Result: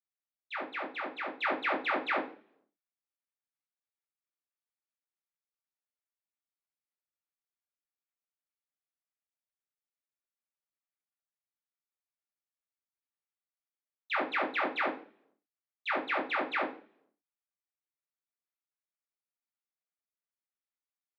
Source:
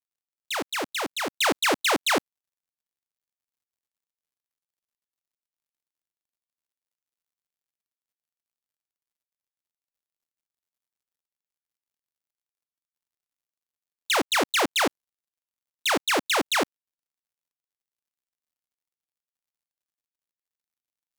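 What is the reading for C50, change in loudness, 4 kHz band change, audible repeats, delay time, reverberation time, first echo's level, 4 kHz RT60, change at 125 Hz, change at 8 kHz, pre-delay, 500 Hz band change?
11.5 dB, -8.5 dB, -17.5 dB, no echo, no echo, 0.45 s, no echo, 0.55 s, under -15 dB, under -40 dB, 3 ms, -8.0 dB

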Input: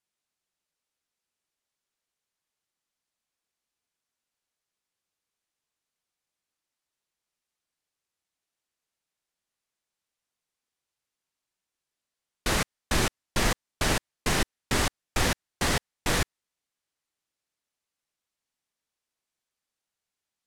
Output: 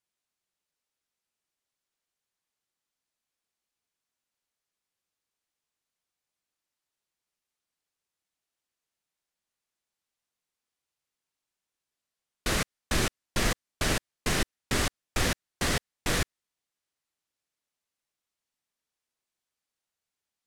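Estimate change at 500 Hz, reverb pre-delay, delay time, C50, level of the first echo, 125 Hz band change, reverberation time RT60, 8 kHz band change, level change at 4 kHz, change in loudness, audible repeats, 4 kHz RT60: -2.0 dB, no reverb, no echo, no reverb, no echo, -1.5 dB, no reverb, -1.5 dB, -1.5 dB, -2.0 dB, no echo, no reverb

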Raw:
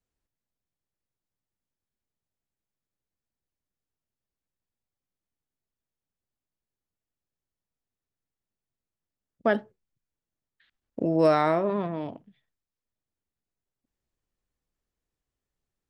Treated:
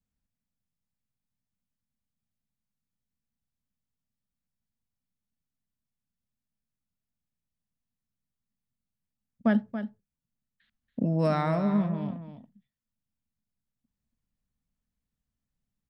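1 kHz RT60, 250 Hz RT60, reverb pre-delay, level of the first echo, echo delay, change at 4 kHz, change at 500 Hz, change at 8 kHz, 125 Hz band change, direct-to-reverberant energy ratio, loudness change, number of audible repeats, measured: no reverb, no reverb, no reverb, -10.5 dB, 281 ms, -4.5 dB, -7.0 dB, no reading, +6.0 dB, no reverb, -2.5 dB, 1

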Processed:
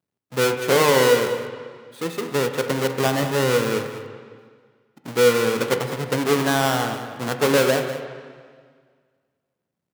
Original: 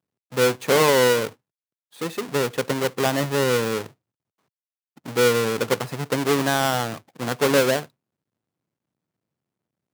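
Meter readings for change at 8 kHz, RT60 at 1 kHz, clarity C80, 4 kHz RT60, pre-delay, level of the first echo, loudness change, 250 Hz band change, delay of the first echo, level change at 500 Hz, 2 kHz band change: +0.5 dB, 1.8 s, 7.5 dB, 1.7 s, 8 ms, -13.0 dB, +1.0 dB, +1.5 dB, 199 ms, +1.5 dB, +1.0 dB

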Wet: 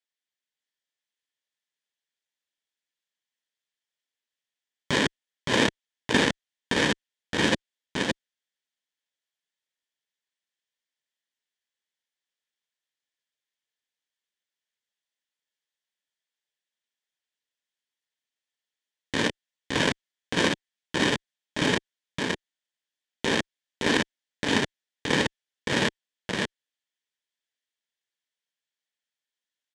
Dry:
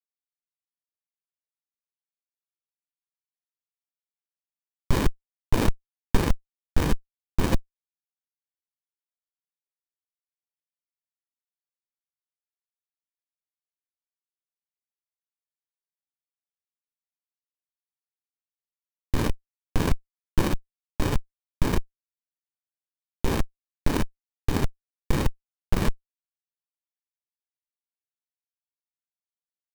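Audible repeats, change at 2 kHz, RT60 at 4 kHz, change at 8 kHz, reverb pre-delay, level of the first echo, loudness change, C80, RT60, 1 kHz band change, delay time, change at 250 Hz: 1, +11.0 dB, no reverb, +5.0 dB, no reverb, -3.0 dB, +2.5 dB, no reverb, no reverb, +3.0 dB, 567 ms, +1.5 dB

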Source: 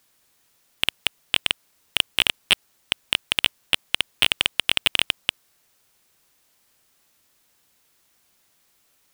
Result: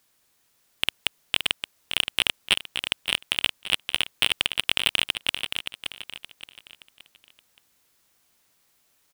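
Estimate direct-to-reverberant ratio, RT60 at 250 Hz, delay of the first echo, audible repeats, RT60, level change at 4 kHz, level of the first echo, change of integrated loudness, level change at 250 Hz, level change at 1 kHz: no reverb, no reverb, 572 ms, 4, no reverb, -2.0 dB, -7.0 dB, -2.5 dB, -2.0 dB, -2.0 dB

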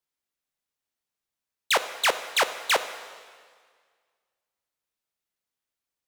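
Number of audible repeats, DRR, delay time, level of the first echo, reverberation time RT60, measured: no echo, 10.0 dB, no echo, no echo, 1.8 s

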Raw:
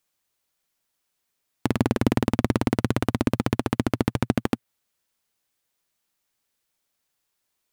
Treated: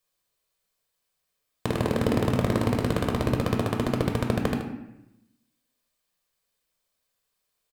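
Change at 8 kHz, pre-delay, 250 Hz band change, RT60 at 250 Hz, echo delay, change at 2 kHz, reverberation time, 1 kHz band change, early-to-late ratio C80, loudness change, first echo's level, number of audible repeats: -2.0 dB, 4 ms, -2.5 dB, 1.1 s, 77 ms, -1.5 dB, 0.85 s, -1.0 dB, 8.0 dB, -1.0 dB, -8.5 dB, 1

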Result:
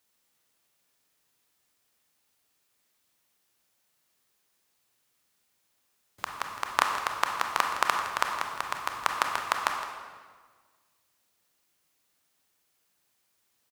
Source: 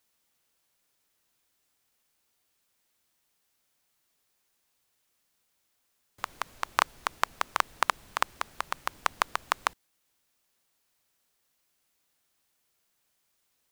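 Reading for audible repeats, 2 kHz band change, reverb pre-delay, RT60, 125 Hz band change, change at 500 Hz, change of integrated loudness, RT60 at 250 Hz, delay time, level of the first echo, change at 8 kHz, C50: 1, +2.0 dB, 24 ms, 1.6 s, +1.5 dB, +2.0 dB, +2.0 dB, 1.8 s, 163 ms, -14.0 dB, +1.5 dB, 4.0 dB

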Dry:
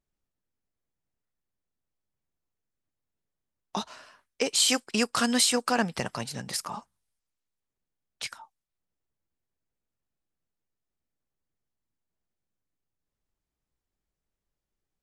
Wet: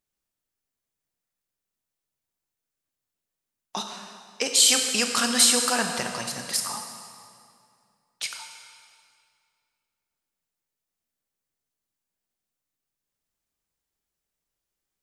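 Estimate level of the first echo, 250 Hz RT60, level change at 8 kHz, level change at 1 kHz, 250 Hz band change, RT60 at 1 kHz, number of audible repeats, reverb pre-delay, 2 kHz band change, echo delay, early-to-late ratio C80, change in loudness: no echo, 2.4 s, +7.5 dB, +1.0 dB, -2.0 dB, 2.2 s, no echo, 19 ms, +3.5 dB, no echo, 6.5 dB, +4.5 dB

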